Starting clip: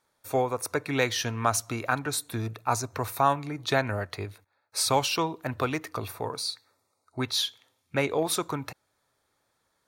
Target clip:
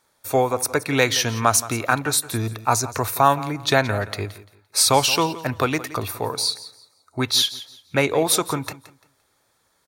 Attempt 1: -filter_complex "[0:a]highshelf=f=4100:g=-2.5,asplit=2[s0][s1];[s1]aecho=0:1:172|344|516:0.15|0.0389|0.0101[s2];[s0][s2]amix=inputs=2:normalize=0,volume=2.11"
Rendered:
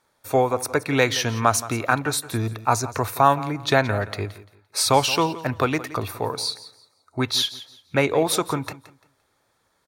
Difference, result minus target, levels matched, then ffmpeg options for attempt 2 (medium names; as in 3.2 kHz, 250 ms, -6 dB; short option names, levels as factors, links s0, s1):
8 kHz band -4.0 dB
-filter_complex "[0:a]highshelf=f=4100:g=4.5,asplit=2[s0][s1];[s1]aecho=0:1:172|344|516:0.15|0.0389|0.0101[s2];[s0][s2]amix=inputs=2:normalize=0,volume=2.11"